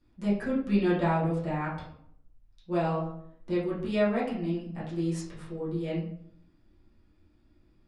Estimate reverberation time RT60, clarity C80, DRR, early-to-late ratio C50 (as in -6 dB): 0.65 s, 8.0 dB, -10.0 dB, 4.5 dB